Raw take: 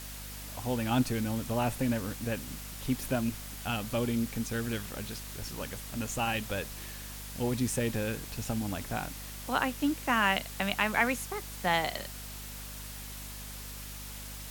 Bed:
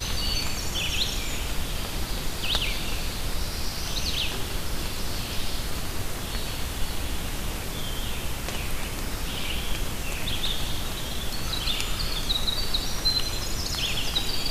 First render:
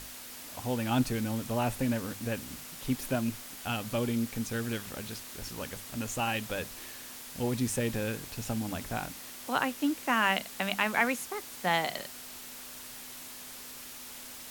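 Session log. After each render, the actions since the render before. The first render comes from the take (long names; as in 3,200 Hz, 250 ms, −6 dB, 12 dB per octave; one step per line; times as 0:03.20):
mains-hum notches 50/100/150/200 Hz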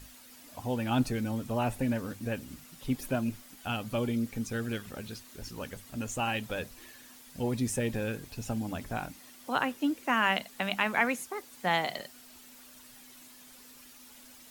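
broadband denoise 10 dB, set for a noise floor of −45 dBFS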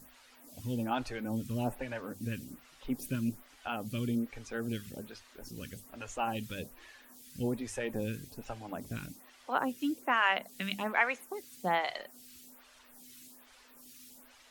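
phaser with staggered stages 1.2 Hz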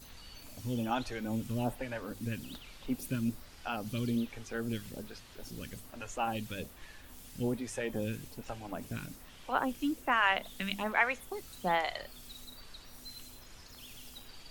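mix in bed −25 dB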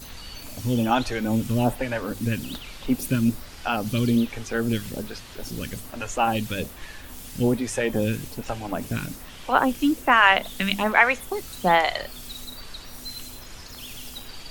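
level +11.5 dB
brickwall limiter −3 dBFS, peak gain reduction 1 dB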